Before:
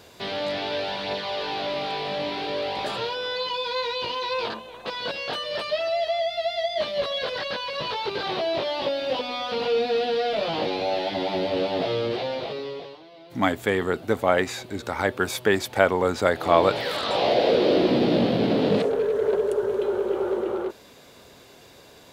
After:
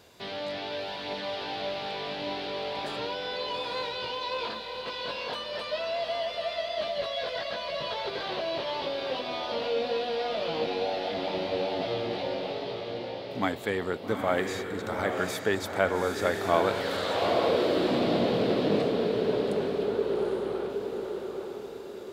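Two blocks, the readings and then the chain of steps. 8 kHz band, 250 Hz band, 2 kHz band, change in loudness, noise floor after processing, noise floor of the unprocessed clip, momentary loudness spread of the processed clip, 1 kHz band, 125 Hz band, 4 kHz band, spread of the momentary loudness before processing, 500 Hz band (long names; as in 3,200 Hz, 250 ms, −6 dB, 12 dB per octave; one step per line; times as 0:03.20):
−4.5 dB, −5.0 dB, −5.0 dB, −5.0 dB, −39 dBFS, −50 dBFS, 9 LU, −5.0 dB, −4.5 dB, −4.5 dB, 9 LU, −5.0 dB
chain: feedback delay with all-pass diffusion 835 ms, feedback 46%, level −4 dB
level −6.5 dB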